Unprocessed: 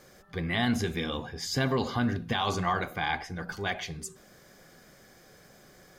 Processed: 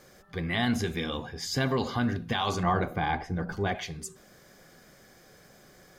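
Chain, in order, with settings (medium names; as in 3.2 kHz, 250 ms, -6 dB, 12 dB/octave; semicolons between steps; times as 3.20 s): 2.63–3.75 s: tilt shelf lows +7 dB, about 1.2 kHz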